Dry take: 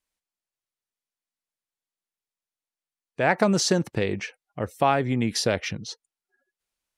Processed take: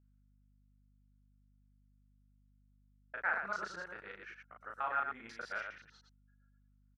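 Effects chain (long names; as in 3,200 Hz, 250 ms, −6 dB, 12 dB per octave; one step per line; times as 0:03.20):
reversed piece by piece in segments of 98 ms
resonant band-pass 1,400 Hz, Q 7.8
loudspeakers that aren't time-aligned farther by 12 metres −2 dB, 40 metres −5 dB
mains hum 50 Hz, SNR 24 dB
level −2 dB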